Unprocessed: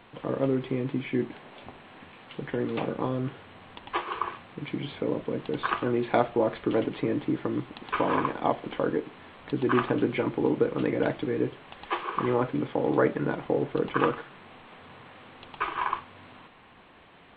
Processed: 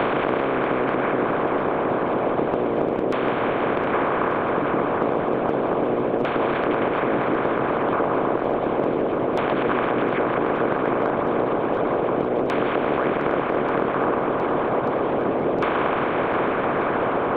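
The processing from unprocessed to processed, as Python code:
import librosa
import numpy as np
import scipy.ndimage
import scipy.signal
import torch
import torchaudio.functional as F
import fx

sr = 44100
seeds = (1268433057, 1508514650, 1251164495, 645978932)

p1 = fx.bin_compress(x, sr, power=0.2)
p2 = fx.filter_lfo_lowpass(p1, sr, shape='saw_down', hz=0.32, low_hz=510.0, high_hz=3500.0, q=1.0)
p3 = fx.transient(p2, sr, attack_db=-4, sustain_db=6)
p4 = p3 + fx.echo_swing(p3, sr, ms=1187, ratio=1.5, feedback_pct=53, wet_db=-10.5, dry=0)
p5 = fx.hpss(p4, sr, part='harmonic', gain_db=-15)
y = fx.band_squash(p5, sr, depth_pct=100)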